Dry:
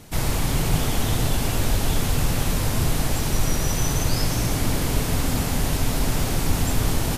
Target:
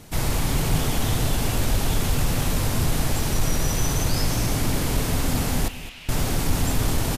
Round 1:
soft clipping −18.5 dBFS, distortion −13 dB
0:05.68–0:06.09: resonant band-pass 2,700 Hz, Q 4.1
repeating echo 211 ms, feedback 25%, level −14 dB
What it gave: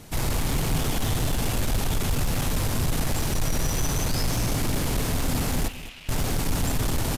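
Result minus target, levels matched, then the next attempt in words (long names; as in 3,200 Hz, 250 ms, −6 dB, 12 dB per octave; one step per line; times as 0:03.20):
soft clipping: distortion +13 dB
soft clipping −9 dBFS, distortion −26 dB
0:05.68–0:06.09: resonant band-pass 2,700 Hz, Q 4.1
repeating echo 211 ms, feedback 25%, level −14 dB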